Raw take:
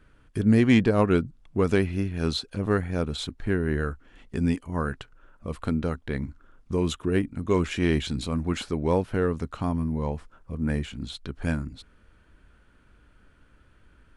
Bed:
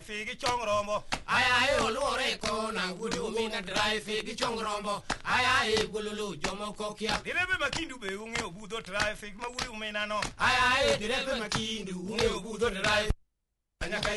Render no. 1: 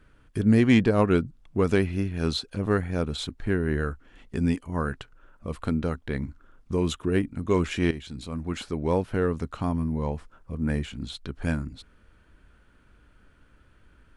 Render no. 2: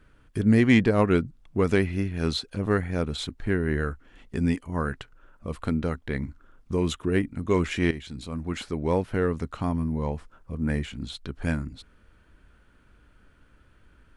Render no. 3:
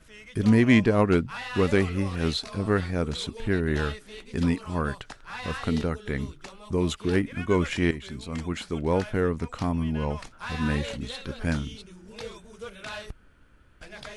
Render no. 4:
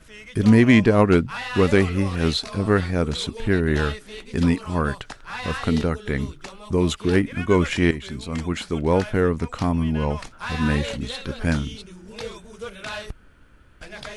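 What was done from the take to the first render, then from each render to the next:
7.91–9.47 fade in equal-power, from -14 dB
dynamic EQ 2000 Hz, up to +5 dB, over -52 dBFS, Q 4.8
add bed -11 dB
gain +5 dB; limiter -3 dBFS, peak gain reduction 2 dB

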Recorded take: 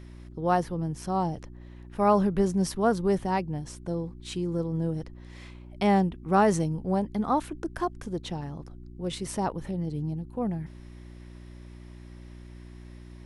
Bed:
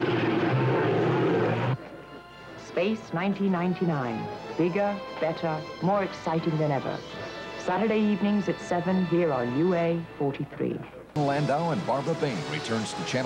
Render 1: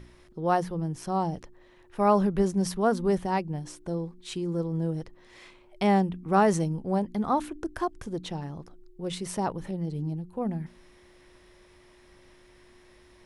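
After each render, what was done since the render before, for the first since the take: de-hum 60 Hz, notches 5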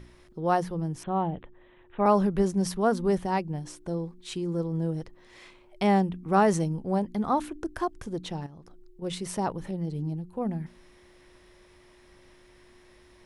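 1.03–2.06 steep low-pass 3700 Hz 96 dB/oct; 8.46–9.02 compressor 4:1, threshold -45 dBFS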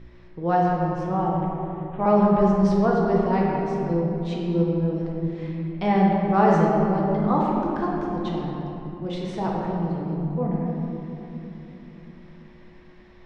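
air absorption 180 m; shoebox room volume 170 m³, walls hard, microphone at 0.67 m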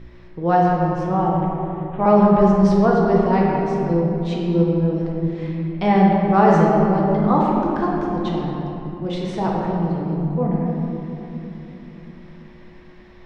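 gain +4.5 dB; limiter -3 dBFS, peak gain reduction 1 dB

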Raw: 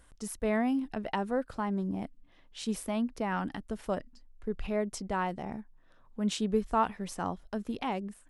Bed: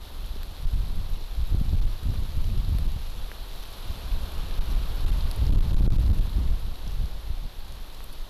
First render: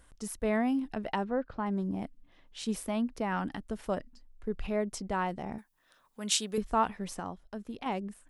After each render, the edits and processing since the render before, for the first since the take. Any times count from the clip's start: 1.24–1.66 air absorption 250 m; 5.58–6.58 tilt +4 dB/oct; 7.2–7.86 gain -5.5 dB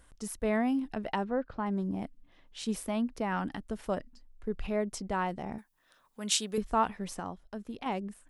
nothing audible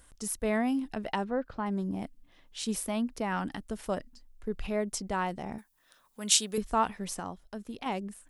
high shelf 4200 Hz +8 dB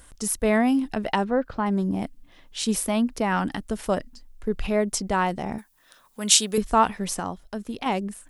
gain +8 dB; limiter -2 dBFS, peak gain reduction 2.5 dB

